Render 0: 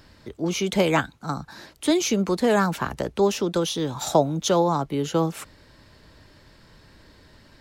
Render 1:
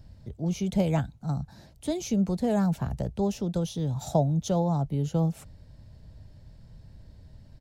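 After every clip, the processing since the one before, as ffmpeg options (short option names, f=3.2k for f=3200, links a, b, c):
-af "firequalizer=gain_entry='entry(120,0);entry(330,-18);entry(690,-11);entry(1100,-24);entry(3600,-20);entry(6100,-17)':delay=0.05:min_phase=1,volume=6.5dB"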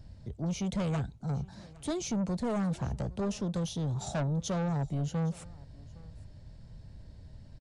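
-af "asoftclip=type=tanh:threshold=-27.5dB,aecho=1:1:812:0.075,aresample=22050,aresample=44100"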